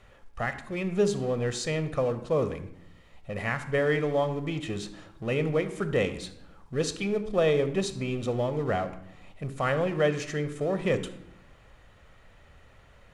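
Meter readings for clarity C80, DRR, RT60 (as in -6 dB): 14.5 dB, 10.5 dB, 0.80 s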